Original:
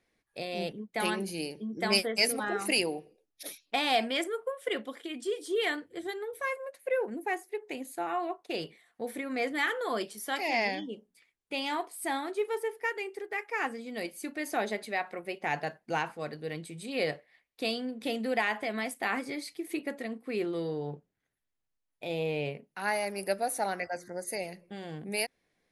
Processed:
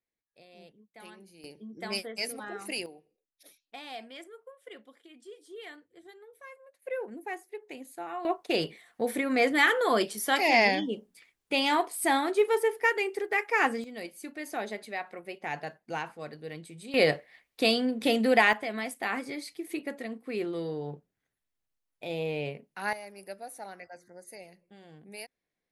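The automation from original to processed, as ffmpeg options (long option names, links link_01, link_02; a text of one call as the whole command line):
ffmpeg -i in.wav -af "asetnsamples=nb_out_samples=441:pad=0,asendcmd='1.44 volume volume -7.5dB;2.86 volume volume -15dB;6.82 volume volume -5dB;8.25 volume volume 7dB;13.84 volume volume -3.5dB;16.94 volume volume 7.5dB;18.53 volume volume -0.5dB;22.93 volume volume -11.5dB',volume=-19dB" out.wav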